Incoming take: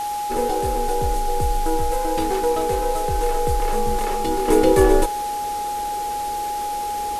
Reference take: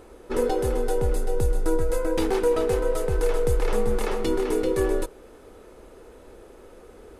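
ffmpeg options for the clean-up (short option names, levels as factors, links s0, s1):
-af "bandreject=f=830:w=30,afwtdn=0.016,asetnsamples=n=441:p=0,asendcmd='4.48 volume volume -8.5dB',volume=1"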